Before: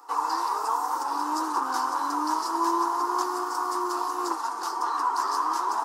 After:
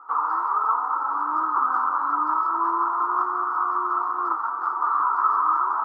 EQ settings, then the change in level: synth low-pass 1300 Hz, resonance Q 15; -7.0 dB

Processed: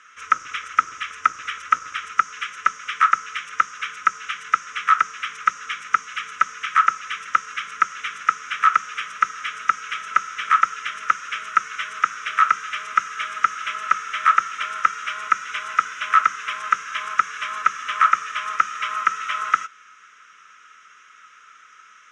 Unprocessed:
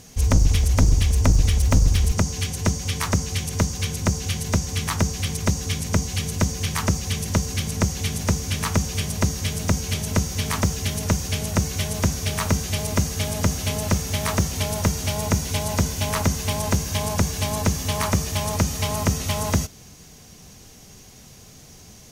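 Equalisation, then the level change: resonant high-pass 1300 Hz, resonance Q 14; LPF 5300 Hz 24 dB/oct; fixed phaser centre 1900 Hz, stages 4; +2.5 dB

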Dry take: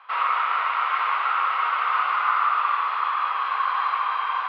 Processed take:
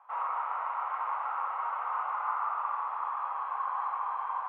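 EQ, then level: ladder band-pass 700 Hz, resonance 35%; bell 870 Hz +10 dB 0.48 oct; 0.0 dB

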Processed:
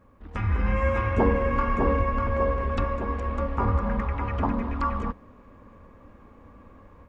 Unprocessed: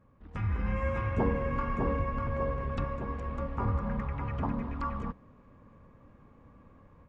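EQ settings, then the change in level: bell 140 Hz -13.5 dB 0.52 oct; +8.0 dB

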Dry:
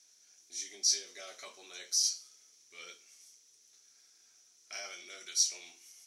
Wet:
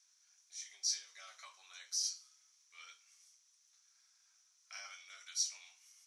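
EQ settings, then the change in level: ladder high-pass 850 Hz, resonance 40%; LPF 11000 Hz 12 dB/oct; +1.0 dB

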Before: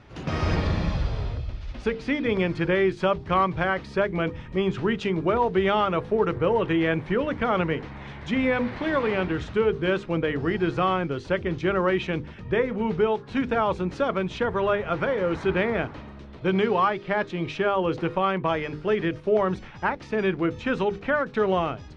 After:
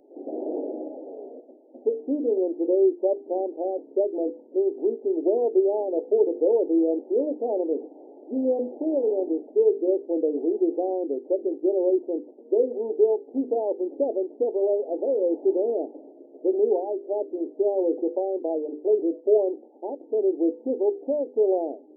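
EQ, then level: brick-wall FIR band-pass 240–1000 Hz; fixed phaser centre 400 Hz, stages 4; +3.5 dB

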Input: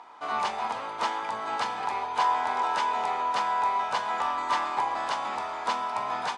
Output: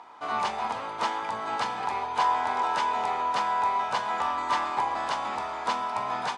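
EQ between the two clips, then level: low shelf 200 Hz +6.5 dB; 0.0 dB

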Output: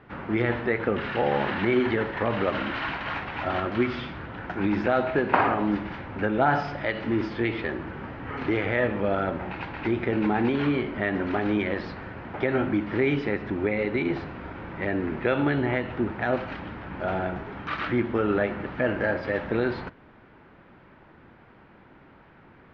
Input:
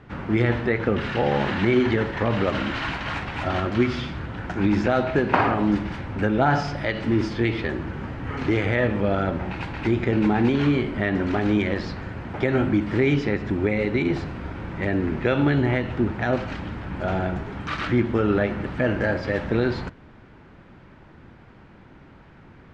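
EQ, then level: Gaussian blur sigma 2.1 samples; low shelf 220 Hz -10 dB; 0.0 dB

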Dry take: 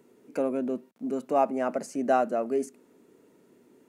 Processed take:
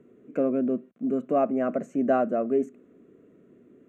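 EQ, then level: running mean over 9 samples; Butterworth band-stop 880 Hz, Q 3.3; low shelf 310 Hz +8.5 dB; 0.0 dB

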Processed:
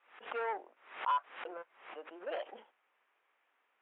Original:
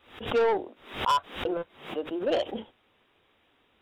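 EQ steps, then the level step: HPF 840 Hz 12 dB/oct; LPF 2400 Hz 24 dB/oct; air absorption 72 m; -5.0 dB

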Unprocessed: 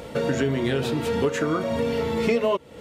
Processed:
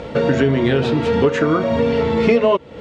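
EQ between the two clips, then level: air absorption 140 m; +8.0 dB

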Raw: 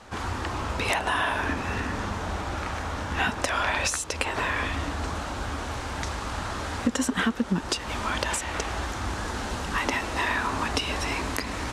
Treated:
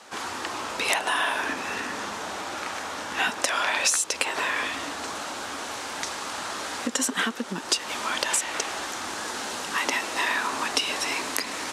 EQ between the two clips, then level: HPF 290 Hz 12 dB/oct; high shelf 3000 Hz +8.5 dB; -1.0 dB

